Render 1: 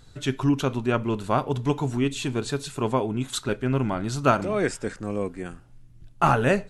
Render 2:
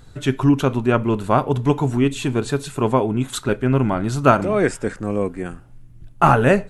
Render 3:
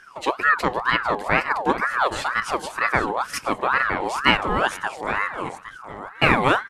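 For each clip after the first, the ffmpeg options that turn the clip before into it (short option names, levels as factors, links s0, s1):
-af "equalizer=f=4900:w=0.78:g=-6.5,volume=2.11"
-af "equalizer=f=3500:t=o:w=0.77:g=3.5,aecho=1:1:814|1628|2442:0.251|0.0603|0.0145,aeval=exprs='val(0)*sin(2*PI*1100*n/s+1100*0.45/2.1*sin(2*PI*2.1*n/s))':c=same,volume=0.891"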